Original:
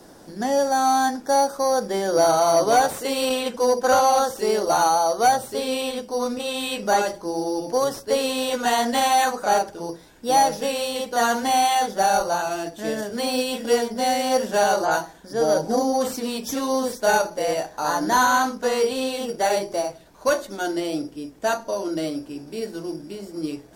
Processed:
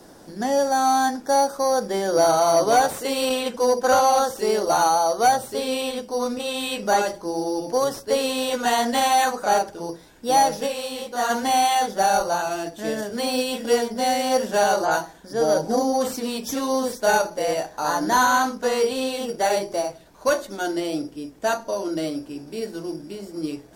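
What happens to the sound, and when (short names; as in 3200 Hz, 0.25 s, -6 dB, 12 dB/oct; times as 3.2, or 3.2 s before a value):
10.66–11.29 detuned doubles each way 52 cents -> 37 cents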